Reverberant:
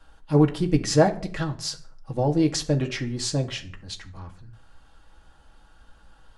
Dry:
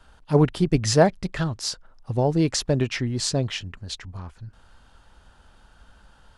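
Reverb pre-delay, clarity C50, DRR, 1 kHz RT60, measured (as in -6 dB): 4 ms, 15.0 dB, 2.0 dB, no reading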